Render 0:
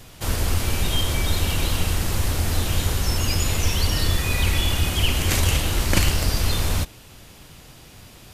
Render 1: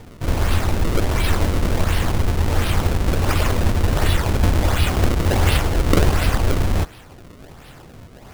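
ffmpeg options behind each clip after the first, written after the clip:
-af "acrusher=samples=31:mix=1:aa=0.000001:lfo=1:lforange=49.6:lforate=1.4,volume=3.5dB"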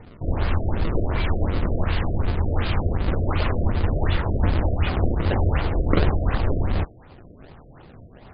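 -af "afftfilt=real='re*lt(b*sr/1024,690*pow(5100/690,0.5+0.5*sin(2*PI*2.7*pts/sr)))':imag='im*lt(b*sr/1024,690*pow(5100/690,0.5+0.5*sin(2*PI*2.7*pts/sr)))':win_size=1024:overlap=0.75,volume=-3.5dB"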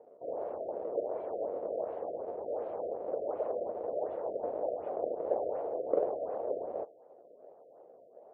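-af "asuperpass=centerf=560:order=4:qfactor=2.2"

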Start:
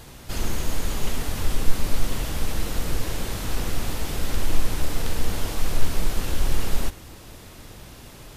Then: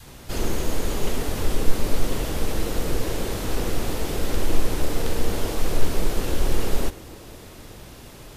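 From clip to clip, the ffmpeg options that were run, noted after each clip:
-af "adynamicequalizer=threshold=0.00316:dfrequency=420:dqfactor=1:tfrequency=420:tqfactor=1:attack=5:release=100:ratio=0.375:range=4:mode=boostabove:tftype=bell"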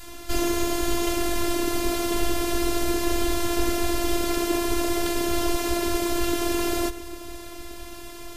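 -af "afftfilt=real='re*lt(hypot(re,im),0.891)':imag='im*lt(hypot(re,im),0.891)':win_size=1024:overlap=0.75,afftfilt=real='hypot(re,im)*cos(PI*b)':imag='0':win_size=512:overlap=0.75,volume=7.5dB"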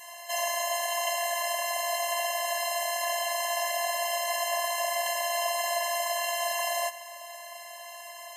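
-af "afftfilt=real='re*eq(mod(floor(b*sr/1024/550),2),1)':imag='im*eq(mod(floor(b*sr/1024/550),2),1)':win_size=1024:overlap=0.75,volume=2.5dB"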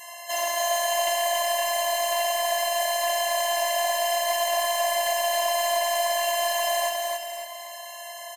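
-af "asoftclip=type=tanh:threshold=-17dB,aecho=1:1:277|554|831|1108|1385|1662:0.708|0.326|0.15|0.0689|0.0317|0.0146,volume=3.5dB"

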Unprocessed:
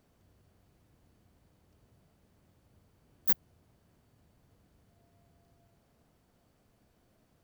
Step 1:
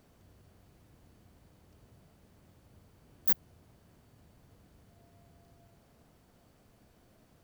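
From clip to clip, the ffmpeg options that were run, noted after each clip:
-af "alimiter=level_in=14dB:limit=-1dB:release=50:level=0:latency=1,volume=-8.5dB"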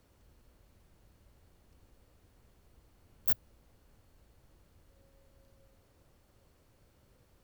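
-af "afreqshift=-140,volume=-2dB"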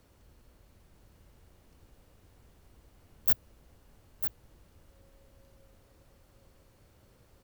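-af "aecho=1:1:949:0.422,volume=3.5dB"

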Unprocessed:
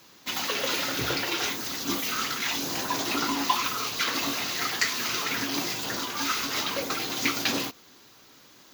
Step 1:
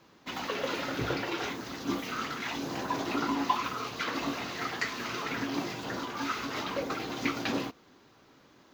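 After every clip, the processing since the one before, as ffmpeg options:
-af "lowpass=f=1.2k:p=1"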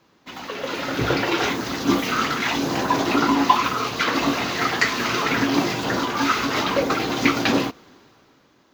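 -af "dynaudnorm=f=110:g=17:m=13dB"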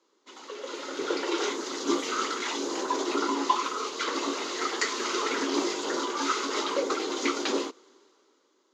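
-af "dynaudnorm=f=320:g=9:m=11.5dB,highpass=f=320:w=0.5412,highpass=f=320:w=1.3066,equalizer=f=390:t=q:w=4:g=6,equalizer=f=710:t=q:w=4:g=-10,equalizer=f=1.7k:t=q:w=4:g=-7,equalizer=f=2.5k:t=q:w=4:g=-7,equalizer=f=7k:t=q:w=4:g=8,lowpass=f=9k:w=0.5412,lowpass=f=9k:w=1.3066,volume=-8.5dB"

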